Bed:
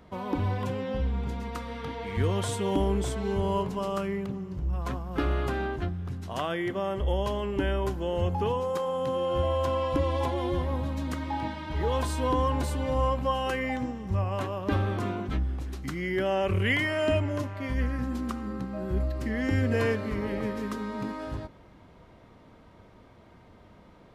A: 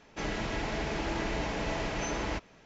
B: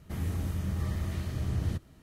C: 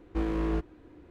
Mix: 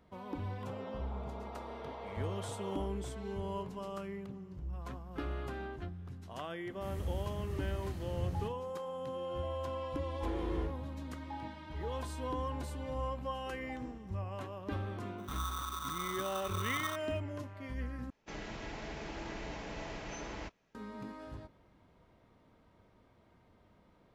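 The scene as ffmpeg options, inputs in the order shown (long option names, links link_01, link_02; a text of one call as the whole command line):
ffmpeg -i bed.wav -i cue0.wav -i cue1.wav -i cue2.wav -filter_complex "[1:a]asplit=2[link_01][link_02];[2:a]asplit=2[link_03][link_04];[3:a]asplit=2[link_05][link_06];[0:a]volume=-11.5dB[link_07];[link_01]asuperpass=centerf=690:order=20:qfactor=0.69[link_08];[link_05]asplit=2[link_09][link_10];[link_10]adelay=39,volume=-5dB[link_11];[link_09][link_11]amix=inputs=2:normalize=0[link_12];[link_06]acompressor=threshold=-31dB:ratio=6:attack=3.2:release=140:knee=1:detection=peak[link_13];[link_04]aeval=exprs='val(0)*sgn(sin(2*PI*1200*n/s))':channel_layout=same[link_14];[link_02]agate=range=-7dB:threshold=-44dB:ratio=16:release=100:detection=peak[link_15];[link_07]asplit=2[link_16][link_17];[link_16]atrim=end=18.104[link_18];[link_15]atrim=end=2.65,asetpts=PTS-STARTPTS,volume=-10dB[link_19];[link_17]atrim=start=20.746[link_20];[link_08]atrim=end=2.65,asetpts=PTS-STARTPTS,volume=-10dB,afade=type=in:duration=0.004:curve=hsin,afade=type=out:start_time=2.646:duration=0.004:curve=hsin,adelay=480[link_21];[link_03]atrim=end=2.02,asetpts=PTS-STARTPTS,volume=-8.5dB,afade=type=in:duration=0.004:curve=hsin,afade=type=out:start_time=2.016:duration=0.004:curve=hsin,adelay=6710[link_22];[link_12]atrim=end=1.1,asetpts=PTS-STARTPTS,volume=-10dB,afade=type=in:duration=0.004:curve=hsin,afade=type=out:start_time=1.096:duration=0.004:curve=hsin,adelay=10070[link_23];[link_13]atrim=end=1.1,asetpts=PTS-STARTPTS,volume=-18dB,afade=type=in:duration=0.004:curve=hsin,afade=type=out:start_time=1.096:duration=0.004:curve=hsin,adelay=13370[link_24];[link_14]atrim=end=2.02,asetpts=PTS-STARTPTS,volume=-9.5dB,afade=type=in:duration=0.004:curve=hsin,afade=type=out:start_time=2.016:duration=0.004:curve=hsin,adelay=15180[link_25];[link_18][link_19]acrossfade=duration=0.004:curve1=hsin:curve2=hsin[link_26];[link_26][link_20]acrossfade=duration=0.004:curve1=hsin:curve2=hsin[link_27];[link_27][link_21][link_22][link_23][link_24][link_25]amix=inputs=6:normalize=0" out.wav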